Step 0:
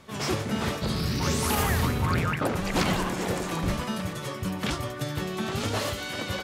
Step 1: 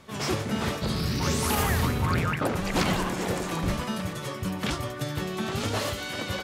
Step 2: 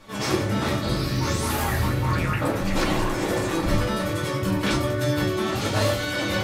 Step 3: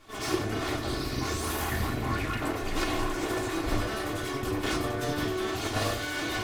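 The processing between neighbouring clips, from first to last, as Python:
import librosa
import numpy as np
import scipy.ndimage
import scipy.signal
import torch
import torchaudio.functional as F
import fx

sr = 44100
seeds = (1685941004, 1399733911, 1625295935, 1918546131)

y1 = x
y2 = fx.rider(y1, sr, range_db=3, speed_s=0.5)
y2 = y2 + 10.0 ** (-18.5 / 20.0) * np.pad(y2, (int(817 * sr / 1000.0), 0))[:len(y2)]
y2 = fx.room_shoebox(y2, sr, seeds[0], volume_m3=120.0, walls='furnished', distance_m=2.3)
y2 = F.gain(torch.from_numpy(y2), -2.5).numpy()
y3 = fx.lower_of_two(y2, sr, delay_ms=2.8)
y3 = F.gain(torch.from_numpy(y3), -4.5).numpy()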